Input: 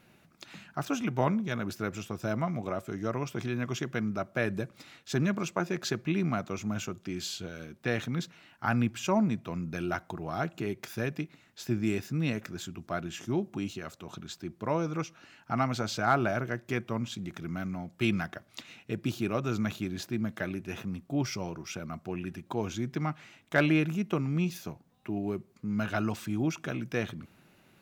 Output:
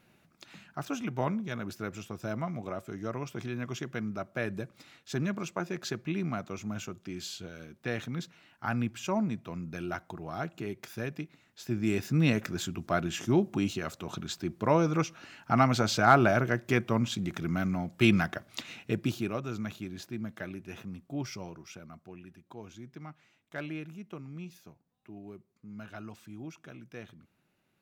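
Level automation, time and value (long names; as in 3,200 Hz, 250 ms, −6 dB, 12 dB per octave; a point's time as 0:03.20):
0:11.63 −3.5 dB
0:12.17 +5 dB
0:18.85 +5 dB
0:19.47 −5.5 dB
0:21.40 −5.5 dB
0:22.31 −13.5 dB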